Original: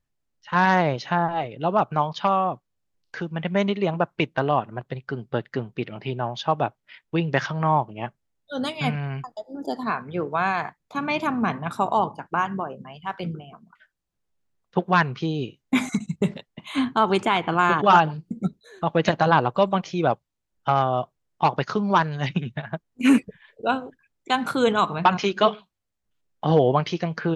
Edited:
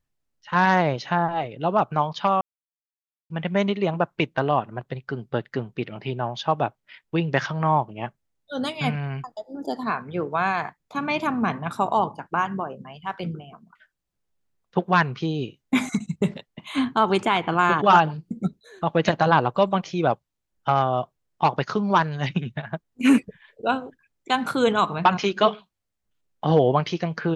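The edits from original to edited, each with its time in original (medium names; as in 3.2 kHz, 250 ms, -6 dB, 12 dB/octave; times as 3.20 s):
2.41–3.30 s: mute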